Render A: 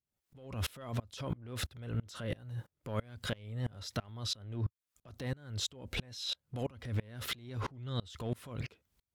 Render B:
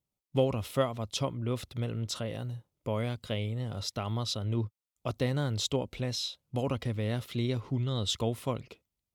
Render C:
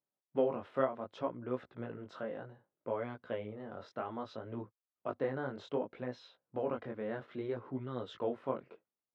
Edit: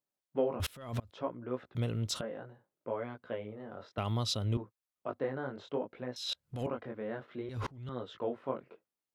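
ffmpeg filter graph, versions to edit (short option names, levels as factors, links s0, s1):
-filter_complex "[0:a]asplit=3[s0][s1][s2];[1:a]asplit=2[s3][s4];[2:a]asplit=6[s5][s6][s7][s8][s9][s10];[s5]atrim=end=0.602[s11];[s0]atrim=start=0.598:end=1.112[s12];[s6]atrim=start=1.108:end=1.752[s13];[s3]atrim=start=1.748:end=2.212[s14];[s7]atrim=start=2.208:end=3.982[s15];[s4]atrim=start=3.978:end=4.572[s16];[s8]atrim=start=4.568:end=6.162[s17];[s1]atrim=start=6.158:end=6.672[s18];[s9]atrim=start=6.668:end=7.492[s19];[s2]atrim=start=7.488:end=7.892[s20];[s10]atrim=start=7.888[s21];[s11][s12]acrossfade=d=0.004:c1=hsin:c2=hsin[s22];[s22][s13]acrossfade=d=0.004:c1=hsin:c2=hsin[s23];[s23][s14]acrossfade=d=0.004:c1=hsin:c2=hsin[s24];[s24][s15]acrossfade=d=0.004:c1=hsin:c2=hsin[s25];[s25][s16]acrossfade=d=0.004:c1=hsin:c2=hsin[s26];[s26][s17]acrossfade=d=0.004:c1=hsin:c2=hsin[s27];[s27][s18]acrossfade=d=0.004:c1=hsin:c2=hsin[s28];[s28][s19]acrossfade=d=0.004:c1=hsin:c2=hsin[s29];[s29][s20]acrossfade=d=0.004:c1=hsin:c2=hsin[s30];[s30][s21]acrossfade=d=0.004:c1=hsin:c2=hsin"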